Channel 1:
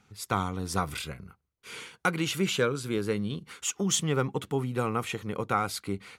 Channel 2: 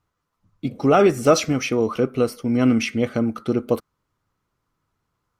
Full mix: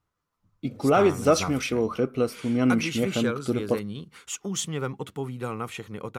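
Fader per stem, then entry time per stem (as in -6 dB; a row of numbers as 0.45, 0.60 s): -3.0, -4.5 dB; 0.65, 0.00 s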